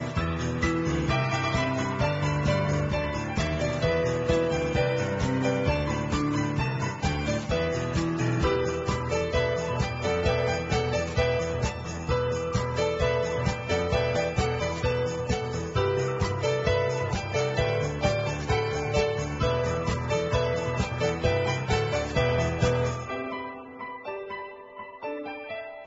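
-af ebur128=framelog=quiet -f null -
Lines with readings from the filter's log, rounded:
Integrated loudness:
  I:         -27.2 LUFS
  Threshold: -37.4 LUFS
Loudness range:
  LRA:         1.0 LU
  Threshold: -47.2 LUFS
  LRA low:   -27.5 LUFS
  LRA high:  -26.5 LUFS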